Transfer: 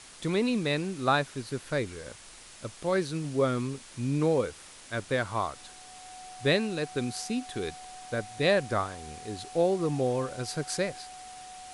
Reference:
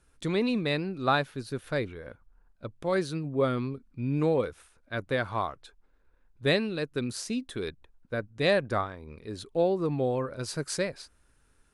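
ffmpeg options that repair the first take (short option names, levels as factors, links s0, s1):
-af "bandreject=f=740:w=30,afwtdn=0.0045"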